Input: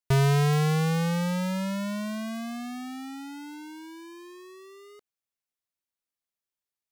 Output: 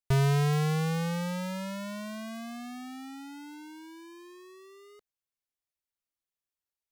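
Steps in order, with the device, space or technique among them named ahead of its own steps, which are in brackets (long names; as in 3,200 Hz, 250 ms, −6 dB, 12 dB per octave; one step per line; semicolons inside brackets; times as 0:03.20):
low shelf boost with a cut just above (low-shelf EQ 86 Hz +8 dB; parametric band 200 Hz −5 dB 0.5 octaves)
level −4 dB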